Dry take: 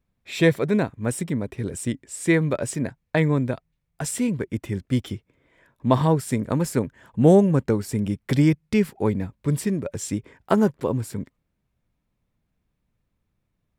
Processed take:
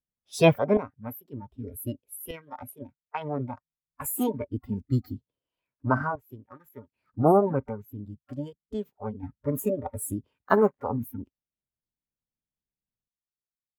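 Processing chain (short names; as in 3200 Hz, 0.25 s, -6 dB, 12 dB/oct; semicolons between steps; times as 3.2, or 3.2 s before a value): random-step tremolo 1.3 Hz, depth 85%; spectral noise reduction 24 dB; formant shift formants +6 st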